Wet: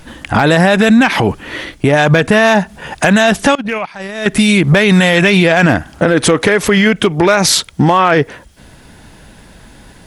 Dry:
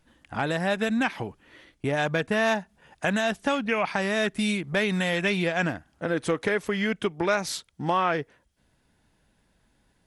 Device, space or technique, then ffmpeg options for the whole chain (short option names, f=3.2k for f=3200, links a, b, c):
loud club master: -filter_complex "[0:a]acompressor=threshold=-28dB:ratio=2,asoftclip=type=hard:threshold=-20dB,alimiter=level_in=28.5dB:limit=-1dB:release=50:level=0:latency=1,asettb=1/sr,asplit=3[a][b][c];[a]atrim=end=3.554[d];[b]atrim=start=3.55:end=4.26,asetpts=PTS-STARTPTS,afade=t=in:d=0.004:c=qsin,afade=t=out:st=0.706:d=0.004:c=qsin,agate=range=-24dB:threshold=-6dB:ratio=16:detection=peak[e];[c]atrim=start=4.256[f];[d][e]acrossfade=d=0.004:c1=hsin:c2=qsin[g];[g][f]acrossfade=d=0.004:c1=qsin:c2=hsin,volume=-1dB"